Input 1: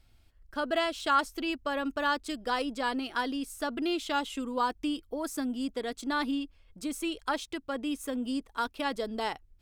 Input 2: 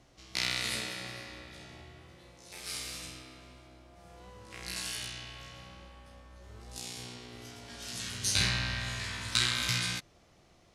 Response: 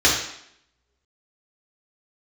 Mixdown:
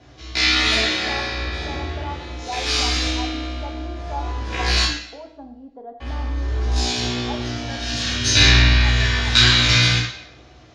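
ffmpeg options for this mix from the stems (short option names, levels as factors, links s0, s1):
-filter_complex "[0:a]lowpass=f=780:t=q:w=5.9,volume=0.119,asplit=2[s0][s1];[s1]volume=0.0794[s2];[1:a]lowpass=4900,volume=0.944,asplit=3[s3][s4][s5];[s3]atrim=end=4.85,asetpts=PTS-STARTPTS,afade=t=out:st=4.846:d=0.004:c=hsin[s6];[s4]atrim=start=4.85:end=6,asetpts=PTS-STARTPTS,volume=0[s7];[s5]atrim=start=6,asetpts=PTS-STARTPTS,afade=t=in:d=0.004:c=hsin[s8];[s6][s7][s8]concat=n=3:v=0:a=1,asplit=2[s9][s10];[s10]volume=0.562[s11];[2:a]atrim=start_sample=2205[s12];[s2][s11]amix=inputs=2:normalize=0[s13];[s13][s12]afir=irnorm=-1:irlink=0[s14];[s0][s9][s14]amix=inputs=3:normalize=0,dynaudnorm=f=130:g=13:m=2"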